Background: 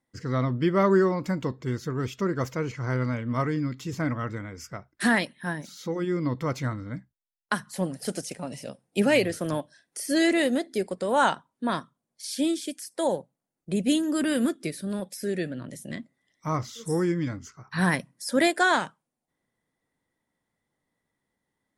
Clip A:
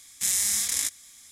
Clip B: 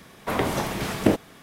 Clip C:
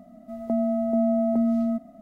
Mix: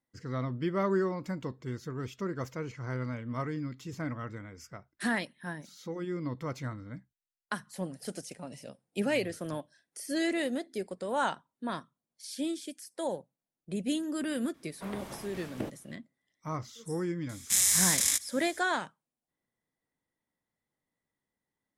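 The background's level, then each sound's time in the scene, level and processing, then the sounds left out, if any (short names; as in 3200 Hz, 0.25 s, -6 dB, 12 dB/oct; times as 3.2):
background -8 dB
14.54 add B -17.5 dB
17.29 add A
not used: C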